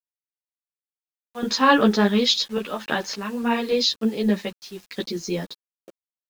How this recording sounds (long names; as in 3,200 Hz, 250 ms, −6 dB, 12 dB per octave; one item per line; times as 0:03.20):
sample-and-hold tremolo, depth 80%
a quantiser's noise floor 8 bits, dither none
a shimmering, thickened sound